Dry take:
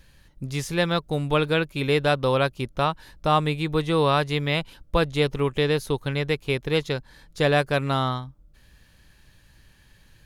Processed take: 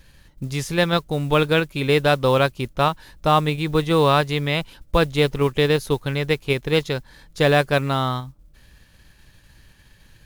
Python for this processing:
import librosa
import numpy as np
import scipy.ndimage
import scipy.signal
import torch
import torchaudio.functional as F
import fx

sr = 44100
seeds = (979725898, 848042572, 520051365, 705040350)

p1 = fx.level_steps(x, sr, step_db=11)
p2 = x + (p1 * 10.0 ** (-2.5 / 20.0))
y = fx.mod_noise(p2, sr, seeds[0], snr_db=29)